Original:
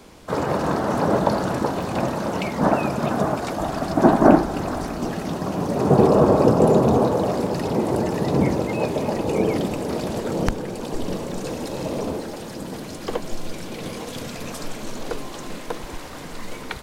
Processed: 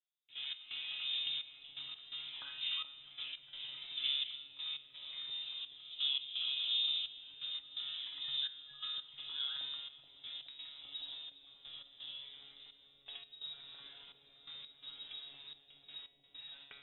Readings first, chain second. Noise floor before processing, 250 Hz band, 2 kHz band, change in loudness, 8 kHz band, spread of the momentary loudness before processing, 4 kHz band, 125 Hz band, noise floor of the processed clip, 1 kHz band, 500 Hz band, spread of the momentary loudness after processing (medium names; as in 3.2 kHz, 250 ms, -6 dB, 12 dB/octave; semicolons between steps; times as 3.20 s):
-35 dBFS, under -40 dB, -17.5 dB, -18.0 dB, under -40 dB, 17 LU, +3.0 dB, under -40 dB, -66 dBFS, -39.0 dB, under -40 dB, 16 LU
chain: gate with hold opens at -24 dBFS; feedback comb 160 Hz, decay 1.7 s, mix 70%; frequency inversion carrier 3.8 kHz; feedback comb 140 Hz, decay 0.82 s, harmonics all, mix 90%; dynamic bell 1.4 kHz, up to +4 dB, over -54 dBFS, Q 1.2; trance gate "..x.xxxx" 85 bpm -12 dB; on a send: bucket-brigade echo 426 ms, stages 2048, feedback 79%, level -8 dB; on the sum: trim +1.5 dB